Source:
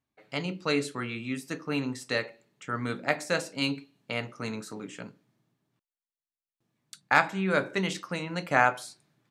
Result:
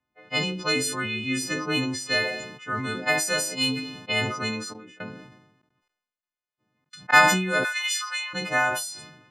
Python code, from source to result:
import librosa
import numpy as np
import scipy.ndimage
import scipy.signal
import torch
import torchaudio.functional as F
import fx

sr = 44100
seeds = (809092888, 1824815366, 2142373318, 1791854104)

y = fx.freq_snap(x, sr, grid_st=3)
y = fx.step_gate(y, sr, bpm=171, pattern='.xxxxxxx.xx...', floor_db=-24.0, edge_ms=4.5, at=(4.72, 7.12), fade=0.02)
y = fx.env_lowpass(y, sr, base_hz=2200.0, full_db=-22.5)
y = fx.rider(y, sr, range_db=4, speed_s=0.5)
y = fx.highpass(y, sr, hz=1100.0, slope=24, at=(7.63, 8.33), fade=0.02)
y = fx.sustainer(y, sr, db_per_s=58.0)